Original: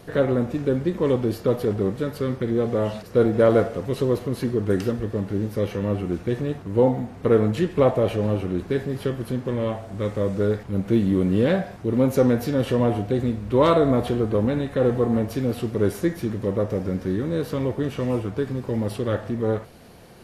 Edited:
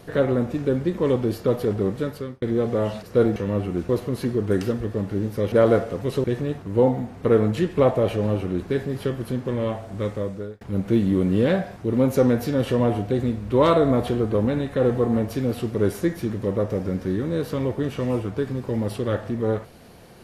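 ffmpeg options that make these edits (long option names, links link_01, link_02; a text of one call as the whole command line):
ffmpeg -i in.wav -filter_complex "[0:a]asplit=7[link_01][link_02][link_03][link_04][link_05][link_06][link_07];[link_01]atrim=end=2.42,asetpts=PTS-STARTPTS,afade=type=out:start_time=2.05:duration=0.37[link_08];[link_02]atrim=start=2.42:end=3.362,asetpts=PTS-STARTPTS,afade=type=in:duration=0.004:curve=hsin[link_09];[link_03]atrim=start=5.708:end=6.242[link_10];[link_04]atrim=start=4.078:end=5.712[link_11];[link_05]atrim=start=3.358:end=4.082[link_12];[link_06]atrim=start=6.238:end=10.61,asetpts=PTS-STARTPTS,afade=type=out:start_time=3.782:duration=0.59[link_13];[link_07]atrim=start=10.61,asetpts=PTS-STARTPTS,afade=type=in:duration=0.004:curve=hsin[link_14];[link_08][link_09]concat=n=2:v=0:a=1[link_15];[link_15][link_10]acrossfade=duration=0.004:curve1=hsin:curve2=hsin[link_16];[link_16][link_11]acrossfade=duration=0.004:curve1=hsin:curve2=hsin[link_17];[link_17][link_12]acrossfade=duration=0.004:curve1=hsin:curve2=hsin[link_18];[link_13][link_14]concat=n=2:v=0:a=1[link_19];[link_18][link_19]acrossfade=duration=0.004:curve1=hsin:curve2=hsin" out.wav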